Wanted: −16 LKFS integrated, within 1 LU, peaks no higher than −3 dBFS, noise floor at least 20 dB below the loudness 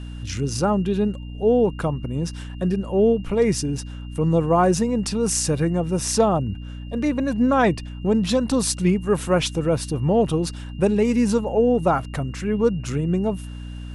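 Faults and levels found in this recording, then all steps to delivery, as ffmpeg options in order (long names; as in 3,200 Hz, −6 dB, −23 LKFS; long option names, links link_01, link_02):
mains hum 60 Hz; hum harmonics up to 300 Hz; level of the hum −32 dBFS; interfering tone 2,800 Hz; level of the tone −49 dBFS; integrated loudness −21.5 LKFS; sample peak −6.0 dBFS; target loudness −16.0 LKFS
→ -af "bandreject=frequency=60:width_type=h:width=4,bandreject=frequency=120:width_type=h:width=4,bandreject=frequency=180:width_type=h:width=4,bandreject=frequency=240:width_type=h:width=4,bandreject=frequency=300:width_type=h:width=4"
-af "bandreject=frequency=2800:width=30"
-af "volume=5.5dB,alimiter=limit=-3dB:level=0:latency=1"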